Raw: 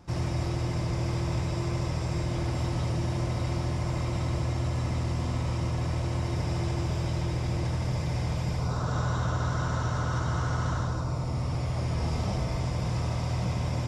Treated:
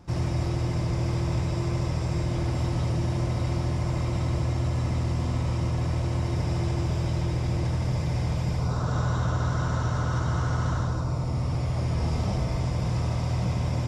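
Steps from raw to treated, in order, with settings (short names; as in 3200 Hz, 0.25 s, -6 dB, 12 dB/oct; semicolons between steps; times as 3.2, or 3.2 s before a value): low shelf 490 Hz +3 dB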